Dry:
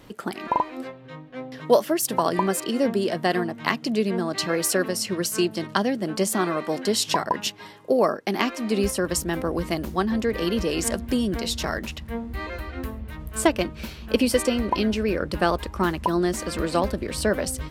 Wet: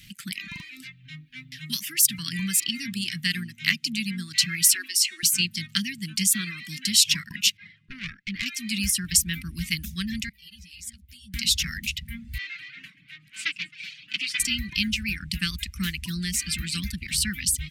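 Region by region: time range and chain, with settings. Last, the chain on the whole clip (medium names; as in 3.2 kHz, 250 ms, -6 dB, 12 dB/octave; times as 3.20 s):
4.74–5.23 s: steep high-pass 260 Hz 96 dB/octave + de-hum 334.2 Hz, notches 33
7.57–8.46 s: low-pass 3 kHz + valve stage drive 20 dB, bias 0.45
10.29–11.34 s: amplifier tone stack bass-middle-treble 6-0-2 + three-phase chorus
12.38–14.40 s: comb filter that takes the minimum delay 6.5 ms + band-pass 410–3500 Hz + frequency-shifting echo 133 ms, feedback 47%, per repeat +46 Hz, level -15.5 dB
whole clip: reverb removal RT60 0.53 s; elliptic band-stop 180–2200 Hz, stop band 60 dB; bass shelf 290 Hz -9 dB; trim +8 dB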